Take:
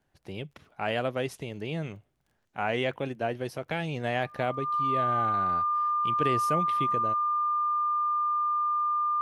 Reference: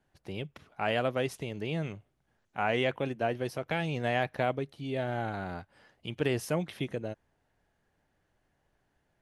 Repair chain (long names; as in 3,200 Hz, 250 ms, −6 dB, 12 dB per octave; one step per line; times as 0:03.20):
click removal
notch filter 1,200 Hz, Q 30